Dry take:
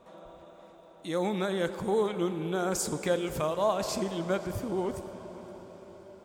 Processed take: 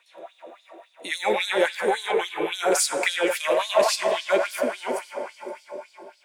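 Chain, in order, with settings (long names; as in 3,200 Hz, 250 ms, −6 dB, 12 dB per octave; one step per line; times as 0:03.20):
thirty-one-band graphic EQ 250 Hz +7 dB, 1,250 Hz −11 dB, 3,150 Hz −3 dB, 10,000 Hz +9 dB
on a send: delay with a band-pass on its return 97 ms, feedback 77%, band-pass 1,000 Hz, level −3.5 dB
on the sum: auto-filter high-pass sine 3.6 Hz 410–4,300 Hz
noise reduction from a noise print of the clip's start 6 dB
in parallel at −9 dB: soft clipping −27 dBFS, distortion −9 dB
on the sum: parametric band 2,400 Hz +10 dB 1.2 octaves
level +3 dB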